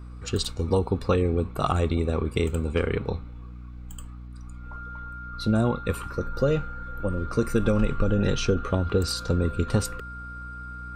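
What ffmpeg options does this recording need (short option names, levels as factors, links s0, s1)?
-af "bandreject=f=60.5:t=h:w=4,bandreject=f=121:t=h:w=4,bandreject=f=181.5:t=h:w=4,bandreject=f=242:t=h:w=4,bandreject=f=302.5:t=h:w=4,bandreject=f=1400:w=30"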